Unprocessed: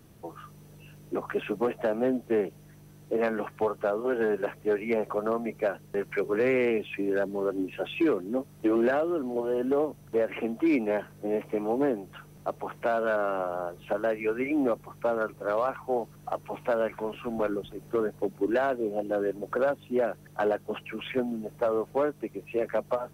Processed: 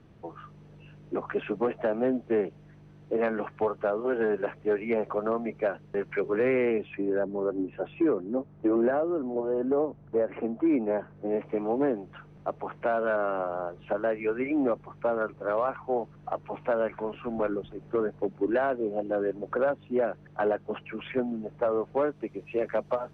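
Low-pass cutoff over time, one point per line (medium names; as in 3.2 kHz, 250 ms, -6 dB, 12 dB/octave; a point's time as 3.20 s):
6.28 s 2.9 kHz
6.90 s 1.9 kHz
7.17 s 1.3 kHz
10.98 s 1.3 kHz
11.51 s 2.5 kHz
21.76 s 2.5 kHz
22.38 s 4.3 kHz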